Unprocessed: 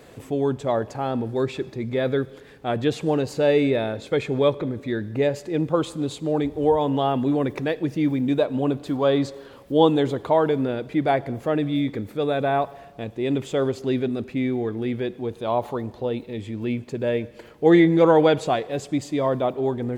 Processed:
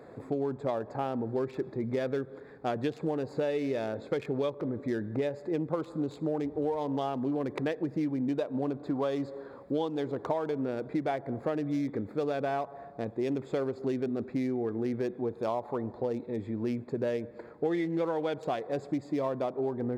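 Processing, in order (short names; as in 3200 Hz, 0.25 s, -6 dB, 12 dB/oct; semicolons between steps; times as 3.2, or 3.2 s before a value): Wiener smoothing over 15 samples; HPF 180 Hz 6 dB/oct; compressor 12:1, threshold -27 dBFS, peak gain reduction 16.5 dB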